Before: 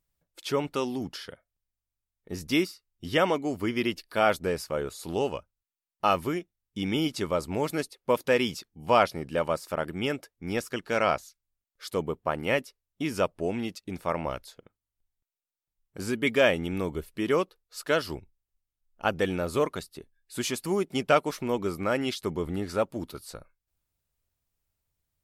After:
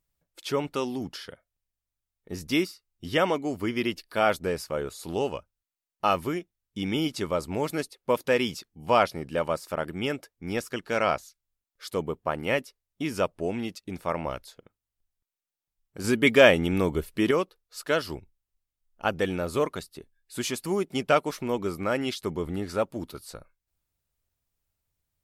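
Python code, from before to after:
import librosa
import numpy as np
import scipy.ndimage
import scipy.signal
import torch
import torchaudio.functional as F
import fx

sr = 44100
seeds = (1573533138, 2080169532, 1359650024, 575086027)

y = fx.edit(x, sr, fx.clip_gain(start_s=16.04, length_s=1.27, db=5.5), tone=tone)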